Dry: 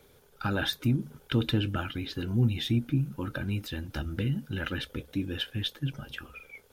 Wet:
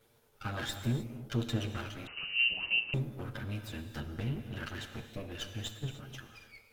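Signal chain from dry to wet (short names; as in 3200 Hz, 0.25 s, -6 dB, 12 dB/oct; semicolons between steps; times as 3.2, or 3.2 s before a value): minimum comb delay 8.7 ms; wow and flutter 24 cents; non-linear reverb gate 0.33 s flat, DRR 7 dB; 2.07–2.94 inverted band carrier 2900 Hz; gain -6.5 dB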